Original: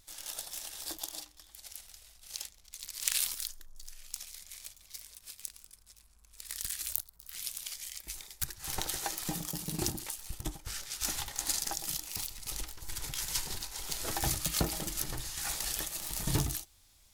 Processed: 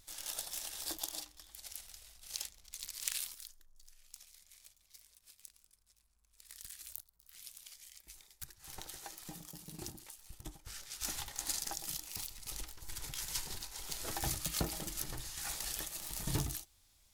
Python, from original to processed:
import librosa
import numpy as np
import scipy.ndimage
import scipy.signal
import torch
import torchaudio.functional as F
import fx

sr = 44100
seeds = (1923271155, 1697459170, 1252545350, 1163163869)

y = fx.gain(x, sr, db=fx.line((2.83, -0.5), (3.36, -12.5), (10.15, -12.5), (11.11, -5.0)))